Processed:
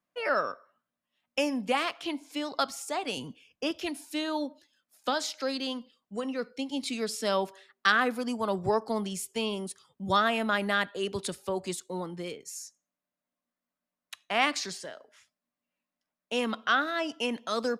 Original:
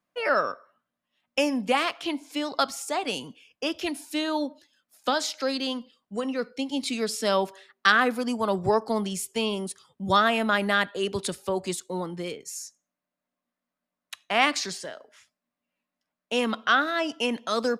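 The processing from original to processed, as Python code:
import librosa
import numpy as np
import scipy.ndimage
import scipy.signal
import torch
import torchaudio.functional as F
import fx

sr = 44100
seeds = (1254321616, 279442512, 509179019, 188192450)

y = fx.low_shelf(x, sr, hz=240.0, db=9.0, at=(3.17, 3.71))
y = F.gain(torch.from_numpy(y), -4.0).numpy()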